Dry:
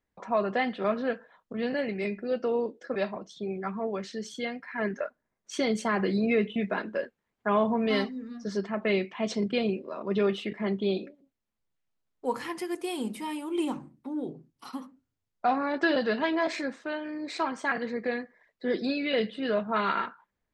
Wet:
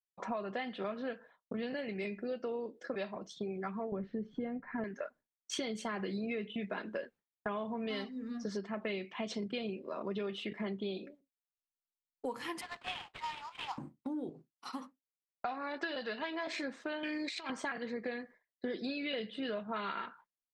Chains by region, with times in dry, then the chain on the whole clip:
3.92–4.84 s: low-pass 1.8 kHz + tilt EQ -4 dB/octave + upward compressor, threshold -42 dBFS
12.61–13.78 s: steep high-pass 720 Hz 72 dB/octave + sample-rate reducer 6 kHz, jitter 20% + distance through air 140 m
14.29–16.47 s: low-pass 8.7 kHz + bass shelf 450 Hz -8.5 dB + band-stop 3.2 kHz, Q 18
17.03–17.50 s: high-pass 150 Hz + high-order bell 4.3 kHz +10.5 dB 2.7 oct + compressor with a negative ratio -34 dBFS, ratio -0.5
whole clip: expander -44 dBFS; dynamic bell 3.2 kHz, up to +5 dB, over -48 dBFS, Q 1.8; compression 6:1, threshold -38 dBFS; trim +2 dB

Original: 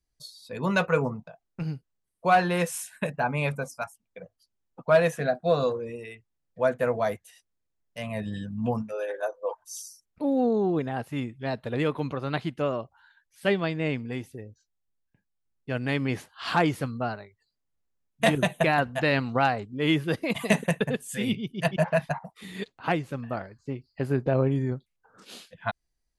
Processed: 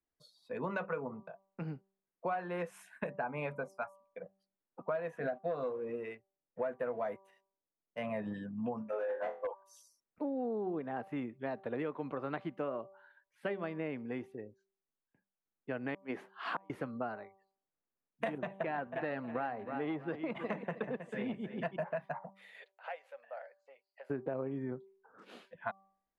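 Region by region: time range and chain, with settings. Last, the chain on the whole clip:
5.23–8.33 s: waveshaping leveller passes 1 + tape noise reduction on one side only decoder only
8.90–9.47 s: peaking EQ 920 Hz +9.5 dB 1.1 oct + hard clipper -24 dBFS + flutter echo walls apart 4 m, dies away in 0.26 s
15.94–16.70 s: high-pass 200 Hz + inverted gate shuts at -15 dBFS, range -41 dB
18.38–21.66 s: distance through air 94 m + feedback delay 317 ms, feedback 35%, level -14 dB + transformer saturation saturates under 640 Hz
22.35–24.10 s: peaking EQ 1.1 kHz -14 dB 0.74 oct + compression 2:1, threshold -36 dBFS + elliptic high-pass 540 Hz
whole clip: three-band isolator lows -17 dB, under 190 Hz, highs -21 dB, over 2.3 kHz; de-hum 193.9 Hz, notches 6; compression, threshold -32 dBFS; trim -2 dB

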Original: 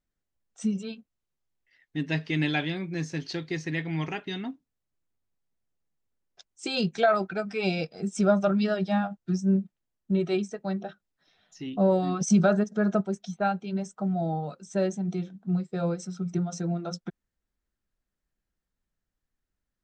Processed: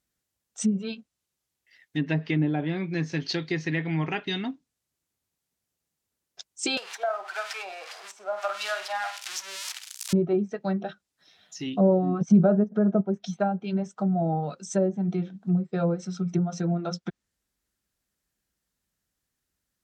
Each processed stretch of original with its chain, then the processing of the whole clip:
6.77–10.13 s: zero-crossing glitches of -18 dBFS + high-pass 780 Hz 24 dB/octave + flutter echo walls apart 8.3 m, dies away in 0.31 s
whole clip: low-pass that closes with the level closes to 640 Hz, closed at -22.5 dBFS; high-pass 59 Hz; treble shelf 3.3 kHz +10 dB; trim +3 dB

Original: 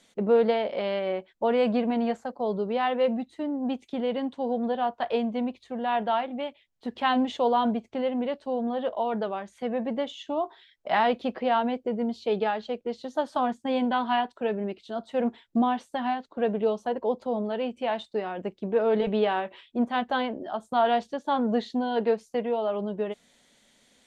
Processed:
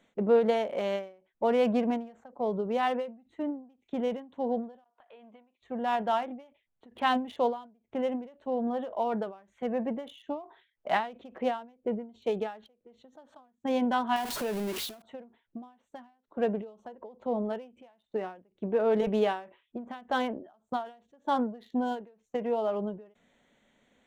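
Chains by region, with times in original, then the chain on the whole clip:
4.84–5.62 s: high-pass 1.3 kHz 6 dB/octave + compression, threshold -48 dBFS
14.16–15.02 s: jump at every zero crossing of -31 dBFS + treble shelf 3.4 kHz +9 dB + compression 3:1, threshold -28 dBFS
whole clip: local Wiener filter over 9 samples; endings held to a fixed fall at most 140 dB/s; trim -1.5 dB

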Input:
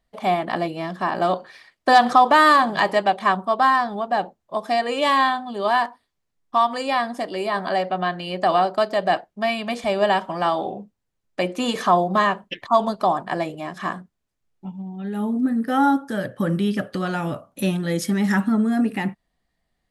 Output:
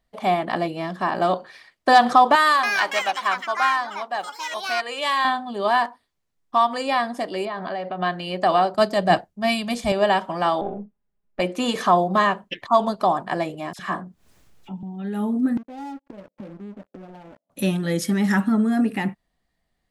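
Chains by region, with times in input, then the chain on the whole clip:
2.35–5.25 s: high-pass 1.3 kHz 6 dB/octave + ever faster or slower copies 282 ms, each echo +5 st, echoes 2, each echo -6 dB
7.45–8.02 s: compression 4:1, threshold -25 dBFS + distance through air 140 m
8.74–9.92 s: tone controls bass +11 dB, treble +8 dB + three bands expanded up and down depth 100%
10.61–11.40 s: partial rectifier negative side -3 dB + tape spacing loss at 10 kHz 36 dB + comb 4.9 ms, depth 78%
13.73–14.83 s: phase dispersion lows, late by 60 ms, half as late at 1.5 kHz + upward compressor, threshold -35 dBFS
15.57–17.50 s: Chebyshev band-pass 180–920 Hz, order 4 + inverted gate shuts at -29 dBFS, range -33 dB + waveshaping leveller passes 5
whole clip: none

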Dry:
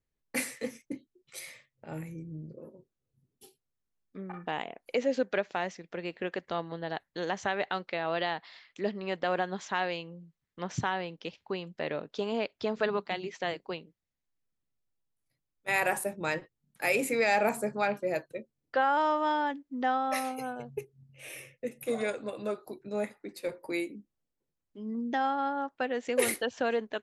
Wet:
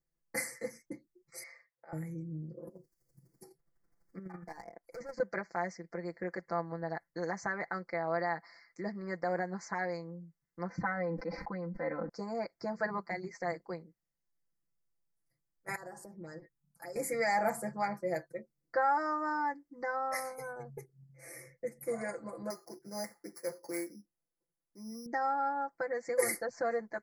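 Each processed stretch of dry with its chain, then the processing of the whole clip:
1.43–1.93 s: band-pass 130–6500 Hz + three-band isolator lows -23 dB, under 530 Hz, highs -17 dB, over 4.7 kHz
2.67–5.20 s: hard clipper -32 dBFS + square tremolo 12 Hz, depth 60%, duty 20% + three bands compressed up and down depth 70%
10.69–12.09 s: distance through air 340 m + comb 3.9 ms, depth 92% + decay stretcher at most 28 dB/s
15.75–16.96 s: touch-sensitive phaser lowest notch 290 Hz, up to 2.3 kHz, full sweep at -27.5 dBFS + compression 3:1, threshold -44 dBFS
22.50–25.06 s: sorted samples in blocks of 8 samples + bass shelf 240 Hz -7.5 dB
whole clip: dynamic bell 340 Hz, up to -4 dB, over -41 dBFS, Q 1.1; elliptic band-stop 2.1–4.6 kHz, stop band 40 dB; comb 5.9 ms, depth 92%; trim -4.5 dB

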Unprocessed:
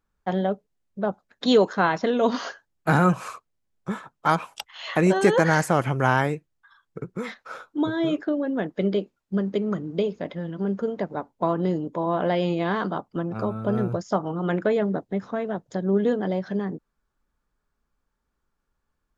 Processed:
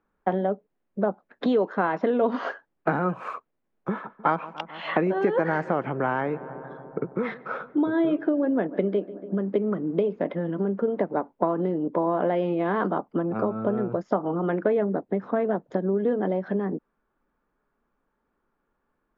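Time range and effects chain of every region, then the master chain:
3.90–9.48 s: low-pass 6.4 kHz 24 dB/octave + filtered feedback delay 145 ms, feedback 78%, low-pass 1.9 kHz, level -22 dB
whole clip: tilt EQ -2 dB/octave; compression 6:1, threshold -25 dBFS; three-band isolator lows -21 dB, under 210 Hz, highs -21 dB, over 2.9 kHz; trim +6.5 dB

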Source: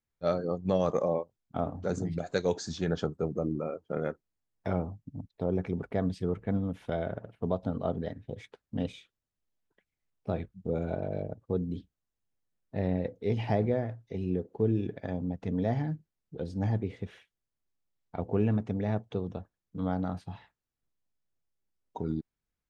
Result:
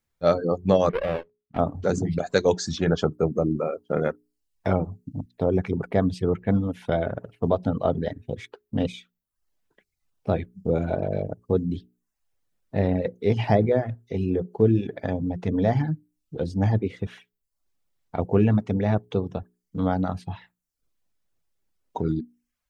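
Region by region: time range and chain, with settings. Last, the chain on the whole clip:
0.89–1.58 s: dead-time distortion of 0.27 ms + valve stage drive 20 dB, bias 0.6 + distance through air 400 m
whole clip: hum notches 60/120/180/240/300/360/420 Hz; reverb removal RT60 0.53 s; trim +9 dB

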